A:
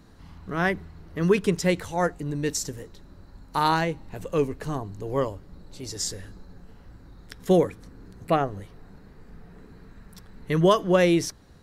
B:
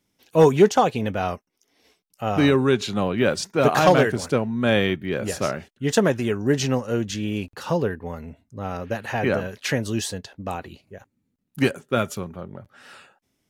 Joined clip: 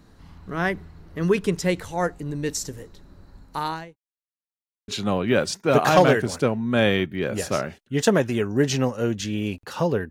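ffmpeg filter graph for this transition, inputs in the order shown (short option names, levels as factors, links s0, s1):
-filter_complex "[0:a]apad=whole_dur=10.1,atrim=end=10.1,asplit=2[s0][s1];[s0]atrim=end=3.96,asetpts=PTS-STARTPTS,afade=t=out:st=3.38:d=0.58[s2];[s1]atrim=start=3.96:end=4.88,asetpts=PTS-STARTPTS,volume=0[s3];[1:a]atrim=start=2.78:end=8,asetpts=PTS-STARTPTS,afade=t=in:d=0.004:c=hsin[s4];[s2][s3][s4]concat=n=3:v=0:a=1"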